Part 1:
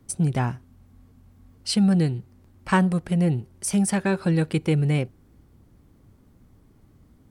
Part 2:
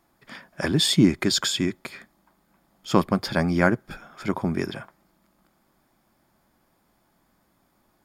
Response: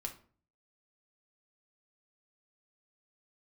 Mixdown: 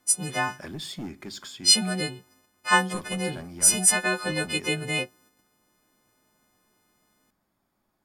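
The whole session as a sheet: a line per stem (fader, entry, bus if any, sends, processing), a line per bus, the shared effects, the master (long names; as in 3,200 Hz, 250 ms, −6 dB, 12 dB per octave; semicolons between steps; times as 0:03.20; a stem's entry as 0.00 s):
+1.0 dB, 0.00 s, no send, every partial snapped to a pitch grid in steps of 3 semitones; noise gate −53 dBFS, range −7 dB; meter weighting curve A
−11.0 dB, 0.00 s, send −10.5 dB, soft clipping −15.5 dBFS, distortion −10 dB; automatic ducking −8 dB, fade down 1.20 s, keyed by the first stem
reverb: on, RT60 0.45 s, pre-delay 5 ms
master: no processing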